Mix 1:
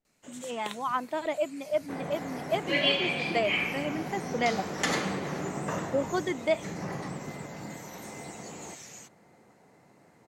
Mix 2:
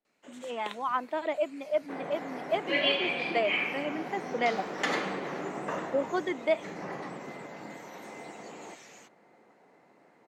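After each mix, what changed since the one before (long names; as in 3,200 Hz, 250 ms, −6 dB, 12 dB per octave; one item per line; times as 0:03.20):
master: add three-way crossover with the lows and the highs turned down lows −17 dB, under 220 Hz, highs −12 dB, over 4,000 Hz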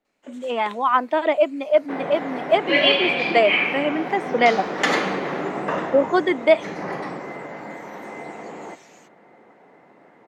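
speech +11.5 dB
second sound +9.5 dB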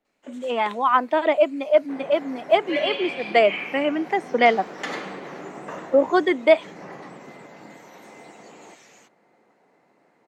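second sound −10.5 dB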